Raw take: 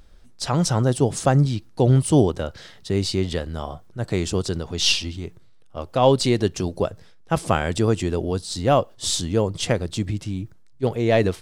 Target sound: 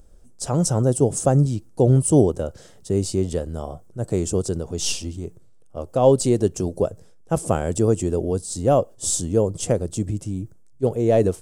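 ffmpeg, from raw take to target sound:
-af "equalizer=f=500:t=o:w=1:g=4,equalizer=f=1k:t=o:w=1:g=-4,equalizer=f=2k:t=o:w=1:g=-10,equalizer=f=4k:t=o:w=1:g=-12,equalizer=f=8k:t=o:w=1:g=8"

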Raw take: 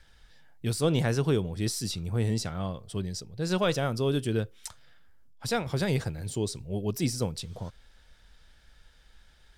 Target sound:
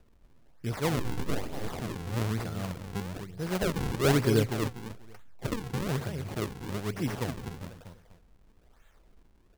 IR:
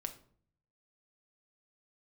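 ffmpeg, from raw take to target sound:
-filter_complex "[0:a]asplit=2[a][b];[b]aecho=0:1:245|490|735:0.422|0.118|0.0331[c];[a][c]amix=inputs=2:normalize=0,acrusher=samples=41:mix=1:aa=0.000001:lfo=1:lforange=65.6:lforate=1.1,asettb=1/sr,asplit=3[d][e][f];[d]atrim=end=0.994[g];[e]atrim=start=0.99:end=1.72,asetpts=PTS-STARTPTS,afade=t=in:d=0.004:c=qsin,afade=t=out:st=0.726:d=0.004:c=qsin,aeval=exprs='abs(val(0))':c=same[h];[f]atrim=start=1.716[i];[g][h]acrossfade=d=0.004:c1=hsin:c2=qsin[j];[j][i]acrossfade=d=0.004:c1=qsin:c2=hsin,asplit=3[k][l][m];[k]afade=t=out:st=4.03:d=0.02[n];[l]acontrast=78,afade=t=in:st=4.03:d=0.02,afade=t=out:st=5.46:d=0.02[o];[m]afade=t=in:st=5.46:d=0.02[p];[n][o][p]amix=inputs=3:normalize=0,volume=-3.5dB"

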